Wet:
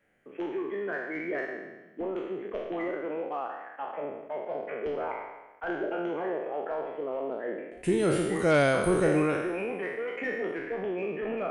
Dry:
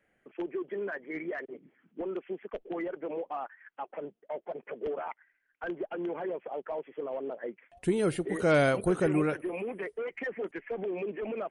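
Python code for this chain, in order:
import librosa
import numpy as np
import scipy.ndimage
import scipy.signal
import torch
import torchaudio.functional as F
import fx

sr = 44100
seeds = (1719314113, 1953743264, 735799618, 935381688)

y = fx.spec_trails(x, sr, decay_s=1.11)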